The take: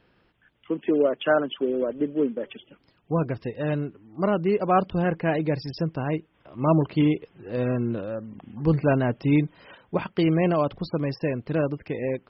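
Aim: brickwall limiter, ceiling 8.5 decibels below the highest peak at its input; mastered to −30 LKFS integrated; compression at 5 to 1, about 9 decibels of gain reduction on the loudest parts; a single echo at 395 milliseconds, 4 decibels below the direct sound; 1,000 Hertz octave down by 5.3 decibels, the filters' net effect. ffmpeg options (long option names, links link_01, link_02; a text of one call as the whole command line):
ffmpeg -i in.wav -af "equalizer=frequency=1000:width_type=o:gain=-8,acompressor=threshold=-27dB:ratio=5,alimiter=level_in=1.5dB:limit=-24dB:level=0:latency=1,volume=-1.5dB,aecho=1:1:395:0.631,volume=4dB" out.wav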